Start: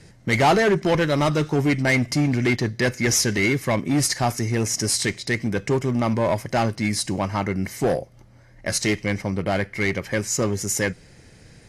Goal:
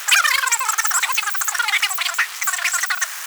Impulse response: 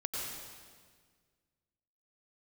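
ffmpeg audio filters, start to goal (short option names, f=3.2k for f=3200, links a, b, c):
-af "aeval=exprs='val(0)+0.5*0.075*sgn(val(0))':c=same,asetrate=157878,aresample=44100,highpass=f=1.2k:w=0.5412,highpass=f=1.2k:w=1.3066,volume=3dB"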